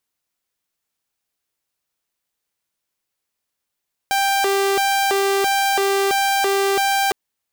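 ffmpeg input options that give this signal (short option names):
-f lavfi -i "aevalsrc='0.211*(2*mod((591*t+197/1.5*(0.5-abs(mod(1.5*t,1)-0.5))),1)-1)':d=3.01:s=44100"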